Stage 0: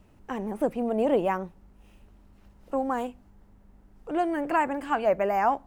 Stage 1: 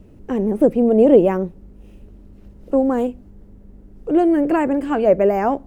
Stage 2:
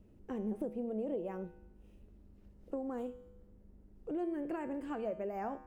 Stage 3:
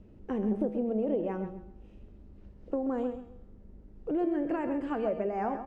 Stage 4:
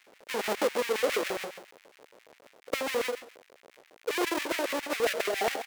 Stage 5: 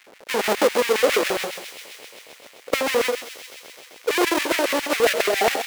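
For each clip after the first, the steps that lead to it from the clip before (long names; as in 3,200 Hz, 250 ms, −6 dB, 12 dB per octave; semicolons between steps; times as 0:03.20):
low shelf with overshoot 630 Hz +9.5 dB, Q 1.5; level +2.5 dB
downward compressor 6 to 1, threshold −19 dBFS, peak gain reduction 12.5 dB; tuned comb filter 71 Hz, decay 0.94 s, harmonics odd, mix 70%; level −6.5 dB
high-frequency loss of the air 110 metres; on a send: repeating echo 132 ms, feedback 23%, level −10 dB; on the sum: level +7.5 dB
each half-wave held at its own peak; auto-filter high-pass square 7.3 Hz 500–2,100 Hz; level −2 dB
delay with a high-pass on its return 130 ms, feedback 81%, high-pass 2,800 Hz, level −10 dB; level +9 dB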